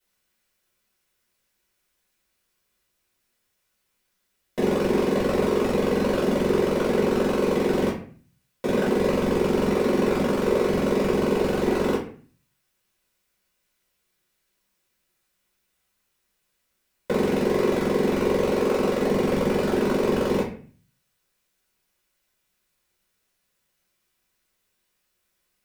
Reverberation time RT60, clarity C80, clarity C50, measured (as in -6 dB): 0.45 s, 9.5 dB, 6.0 dB